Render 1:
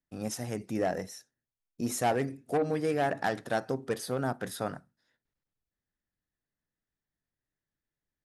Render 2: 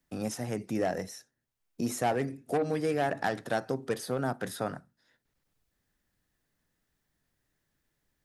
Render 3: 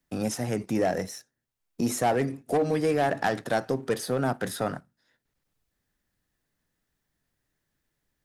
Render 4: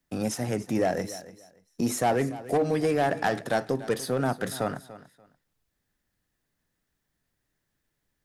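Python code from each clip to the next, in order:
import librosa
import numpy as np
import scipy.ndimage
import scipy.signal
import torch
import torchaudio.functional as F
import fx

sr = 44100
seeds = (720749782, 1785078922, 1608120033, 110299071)

y1 = fx.band_squash(x, sr, depth_pct=40)
y2 = fx.leveller(y1, sr, passes=1)
y2 = y2 * librosa.db_to_amplitude(1.5)
y3 = fx.echo_feedback(y2, sr, ms=290, feedback_pct=21, wet_db=-16.5)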